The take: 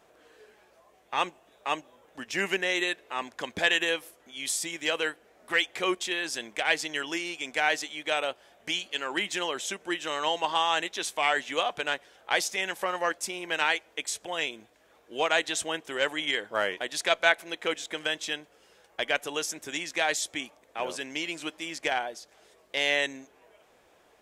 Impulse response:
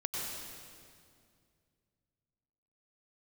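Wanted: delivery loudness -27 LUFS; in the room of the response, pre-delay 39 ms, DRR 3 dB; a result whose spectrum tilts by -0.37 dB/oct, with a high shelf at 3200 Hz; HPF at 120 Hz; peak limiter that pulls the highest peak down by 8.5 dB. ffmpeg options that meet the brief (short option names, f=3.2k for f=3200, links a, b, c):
-filter_complex "[0:a]highpass=120,highshelf=f=3.2k:g=4.5,alimiter=limit=-13.5dB:level=0:latency=1,asplit=2[a][b];[1:a]atrim=start_sample=2205,adelay=39[c];[b][c]afir=irnorm=-1:irlink=0,volume=-6.5dB[d];[a][d]amix=inputs=2:normalize=0,volume=0.5dB"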